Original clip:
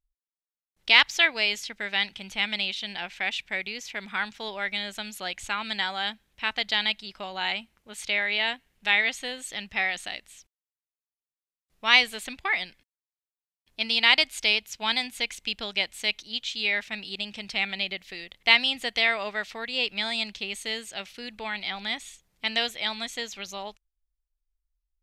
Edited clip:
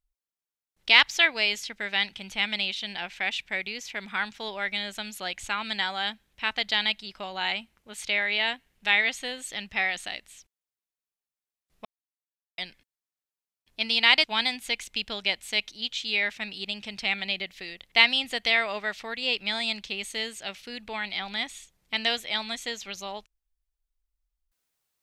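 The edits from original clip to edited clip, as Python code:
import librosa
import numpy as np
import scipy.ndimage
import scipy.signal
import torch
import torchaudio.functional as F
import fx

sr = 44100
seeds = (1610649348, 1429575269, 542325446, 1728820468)

y = fx.edit(x, sr, fx.silence(start_s=11.85, length_s=0.73),
    fx.cut(start_s=14.24, length_s=0.51), tone=tone)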